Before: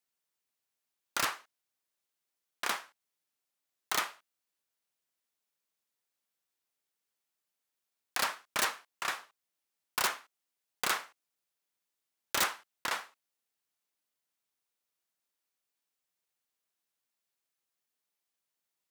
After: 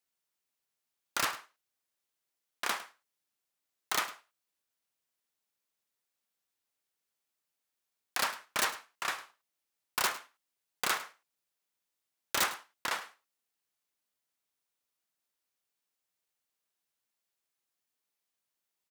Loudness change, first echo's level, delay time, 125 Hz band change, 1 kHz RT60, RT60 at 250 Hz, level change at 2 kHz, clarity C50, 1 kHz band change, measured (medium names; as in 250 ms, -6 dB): 0.0 dB, -17.0 dB, 105 ms, 0.0 dB, no reverb, no reverb, 0.0 dB, no reverb, 0.0 dB